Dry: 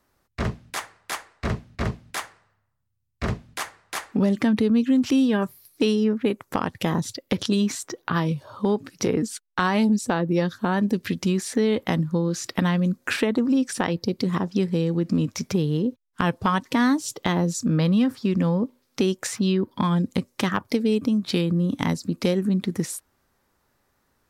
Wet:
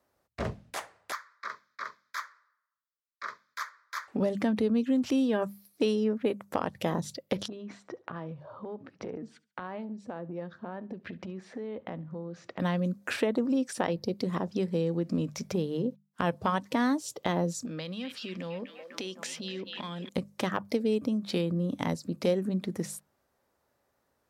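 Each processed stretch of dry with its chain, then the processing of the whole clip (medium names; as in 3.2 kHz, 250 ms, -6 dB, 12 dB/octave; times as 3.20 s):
1.12–4.08 s: resonant high-pass 1.1 kHz, resonance Q 2.6 + static phaser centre 2.8 kHz, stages 6
7.48–12.60 s: low-pass 2.2 kHz + compression 10:1, threshold -28 dBFS + feedback delay 70 ms, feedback 38%, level -22 dB
17.65–20.09 s: frequency weighting D + repeats whose band climbs or falls 250 ms, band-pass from 2.5 kHz, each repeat -0.7 oct, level -5.5 dB + compression 4:1, threshold -28 dBFS
whole clip: high-pass 51 Hz; peaking EQ 590 Hz +8 dB 0.9 oct; hum notches 50/100/150/200 Hz; trim -8 dB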